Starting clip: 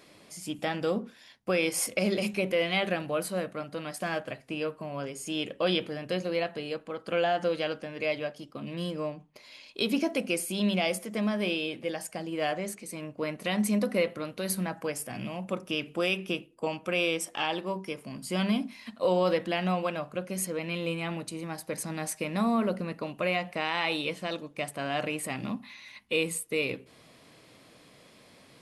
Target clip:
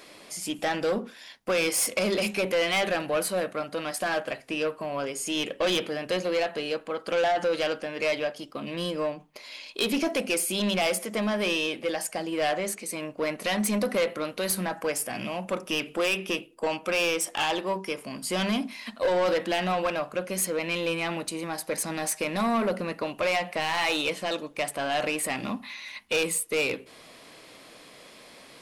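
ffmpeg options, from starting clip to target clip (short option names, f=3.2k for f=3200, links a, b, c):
-af "equalizer=f=110:t=o:w=2.2:g=-11.5,asoftclip=type=tanh:threshold=-28dB,volume=8dB"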